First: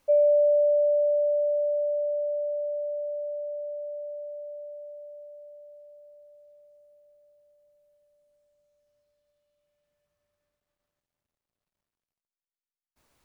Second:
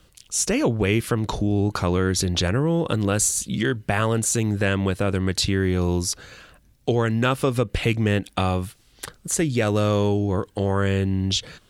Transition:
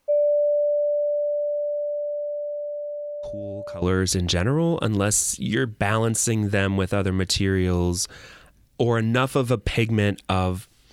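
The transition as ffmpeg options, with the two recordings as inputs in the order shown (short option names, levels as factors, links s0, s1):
-filter_complex "[1:a]asplit=2[s0][s1];[0:a]apad=whole_dur=10.92,atrim=end=10.92,atrim=end=3.822[s2];[s1]atrim=start=1.898:end=9[s3];[s0]atrim=start=1.31:end=1.9,asetpts=PTS-STARTPTS,volume=0.168,afade=t=in:d=0.004:c=hsin,afade=t=out:st=0.586:d=0.004:c=hsin,adelay=3230[s4];[s2][s3]acrossfade=d=0.004:c1=hsin:c2=hsin[s5];[s5][s4]amix=inputs=2:normalize=0"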